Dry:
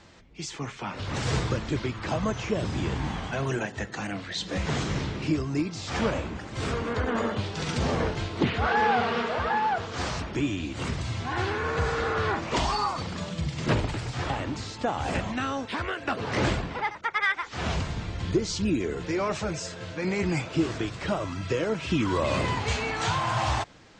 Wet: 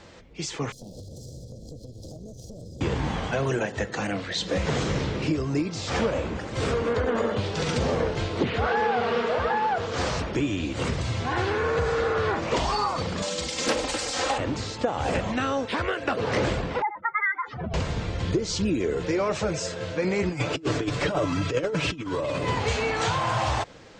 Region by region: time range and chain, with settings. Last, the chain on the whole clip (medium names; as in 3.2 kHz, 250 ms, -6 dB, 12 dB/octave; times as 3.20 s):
0.72–2.81 s: comb filter that takes the minimum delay 1.2 ms + inverse Chebyshev band-stop 1.1–2.3 kHz, stop band 60 dB + compression 20:1, threshold -41 dBFS
13.22–14.38 s: tone controls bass -13 dB, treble +12 dB + comb 3.8 ms, depth 76% + loudspeaker Doppler distortion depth 0.24 ms
16.82–17.74 s: spectral contrast enhancement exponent 2.8 + high-pass 140 Hz
20.29–22.49 s: peaking EQ 320 Hz +4.5 dB 0.23 oct + comb 6.9 ms, depth 50% + compressor with a negative ratio -29 dBFS, ratio -0.5
whole clip: peaking EQ 500 Hz +7.5 dB 0.49 oct; compression 4:1, threshold -25 dBFS; trim +3.5 dB